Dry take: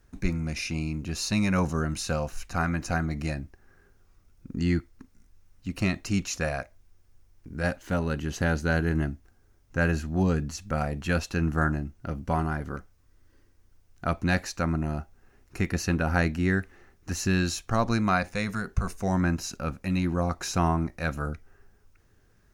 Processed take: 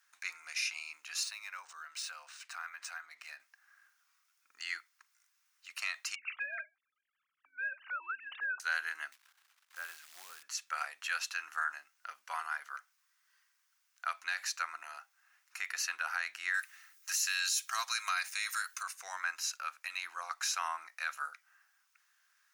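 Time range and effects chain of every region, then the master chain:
1.23–3.4 compressor 4:1, threshold -33 dBFS + decimation joined by straight lines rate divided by 3×
6.15–8.6 sine-wave speech + bell 1300 Hz +4.5 dB 0.21 oct + compressor, threshold -30 dBFS
9.12–10.43 tilt -4.5 dB/oct + compressor 2:1, threshold -28 dBFS + short-mantissa float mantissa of 4-bit
16.54–18.83 tilt +4 dB/oct + notch comb 290 Hz
whole clip: HPF 1200 Hz 24 dB/oct; limiter -22.5 dBFS

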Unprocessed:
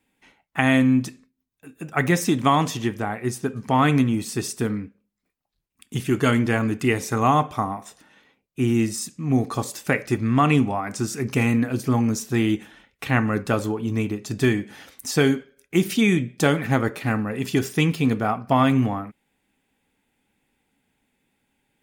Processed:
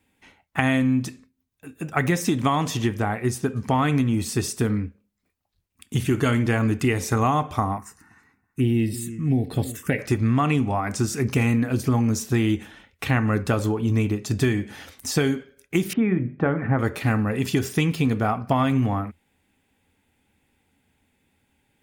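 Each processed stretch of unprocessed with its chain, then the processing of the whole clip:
5.96–6.47 notch 5100 Hz, Q 28 + flutter echo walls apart 9.8 m, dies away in 0.2 s
7.78–9.99 notch 2400 Hz + darkening echo 0.326 s, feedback 16%, low-pass 1600 Hz, level -17 dB + envelope phaser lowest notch 560 Hz, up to 1200 Hz, full sweep at -20 dBFS
15.93–16.79 block floating point 7-bit + LPF 1800 Hz 24 dB/oct + notches 50/100/150/200/250/300/350/400 Hz
whole clip: compressor 4:1, threshold -21 dBFS; bell 83 Hz +13 dB 0.53 oct; de-esser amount 50%; gain +2.5 dB

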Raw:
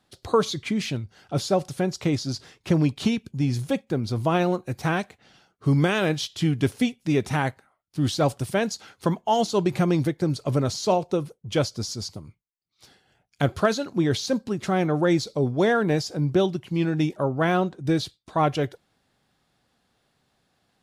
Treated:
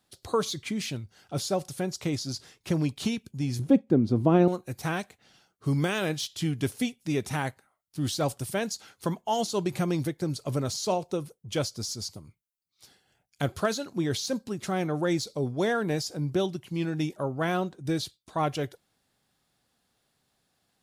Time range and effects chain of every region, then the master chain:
3.59–4.48 LPF 1600 Hz 6 dB/oct + bell 270 Hz +13 dB 1.9 oct
whole clip: de-esser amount 55%; high shelf 6200 Hz +11.5 dB; gain -6 dB

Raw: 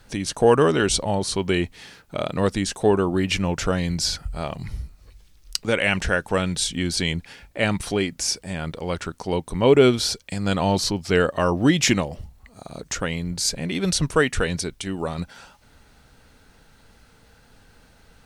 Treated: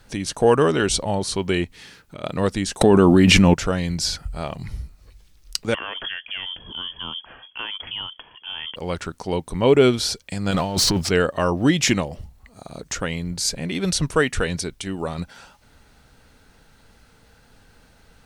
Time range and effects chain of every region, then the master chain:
1.64–2.24 compressor 2:1, threshold -37 dBFS + bell 710 Hz -5 dB
2.81–3.54 bell 230 Hz +6 dB 0.76 oct + fast leveller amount 100%
5.74–8.76 compressor 4:1, threshold -28 dBFS + inverted band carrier 3300 Hz
10.51–11.09 negative-ratio compressor -25 dBFS, ratio -0.5 + sample leveller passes 2
whole clip: dry

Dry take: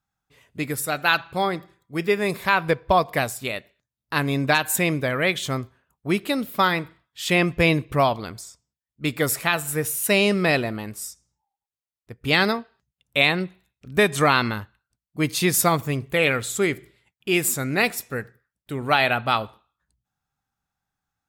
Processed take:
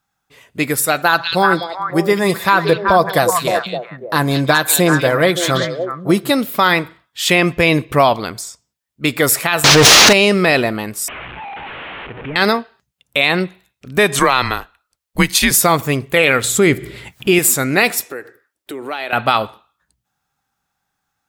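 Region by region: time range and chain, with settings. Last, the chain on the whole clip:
1.02–6.31 bell 2500 Hz -11.5 dB 0.83 oct + comb 5.9 ms, depth 42% + delay with a stepping band-pass 0.189 s, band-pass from 3500 Hz, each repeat -1.4 oct, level -1 dB
9.64–10.13 delta modulation 32 kbps, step -24.5 dBFS + transient shaper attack -5 dB, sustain +9 dB + sample leveller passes 5
11.08–12.36 delta modulation 16 kbps, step -34 dBFS + compressor 3:1, threshold -34 dBFS
14.19–15.51 low shelf 220 Hz -7 dB + transient shaper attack +10 dB, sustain 0 dB + frequency shift -130 Hz
16.44–17.39 low shelf 260 Hz +11.5 dB + upward compressor, threshold -25 dBFS
18.05–19.13 resonant low shelf 240 Hz -9 dB, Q 3 + compressor 3:1, threshold -37 dBFS
whole clip: low shelf 160 Hz -10 dB; maximiser +12 dB; gain -1 dB

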